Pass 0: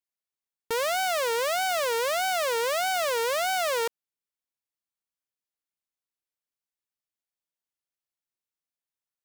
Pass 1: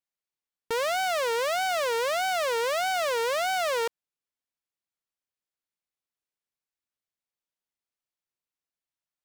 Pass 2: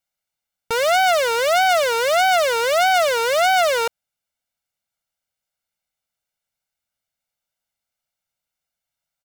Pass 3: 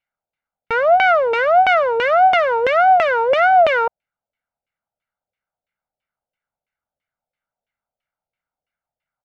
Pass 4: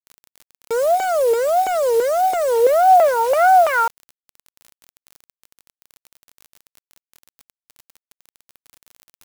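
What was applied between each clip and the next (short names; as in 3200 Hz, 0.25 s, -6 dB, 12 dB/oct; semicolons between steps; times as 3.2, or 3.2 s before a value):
high shelf 8000 Hz -7.5 dB
comb 1.4 ms, depth 67%; gain +7 dB
LFO low-pass saw down 3 Hz 530–2600 Hz
band-pass sweep 410 Hz -> 2300 Hz, 2.48–4.64; crackle 61/s -37 dBFS; bit-crush 6-bit; gain +5 dB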